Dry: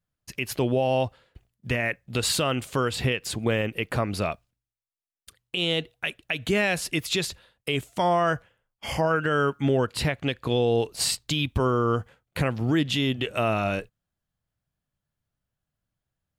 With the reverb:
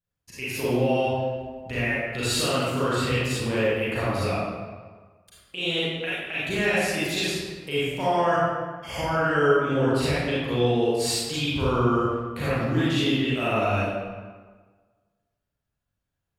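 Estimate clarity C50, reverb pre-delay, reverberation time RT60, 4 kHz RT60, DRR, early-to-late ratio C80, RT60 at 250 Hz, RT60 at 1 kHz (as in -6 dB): -5.0 dB, 33 ms, 1.5 s, 0.95 s, -10.5 dB, -1.0 dB, 1.5 s, 1.5 s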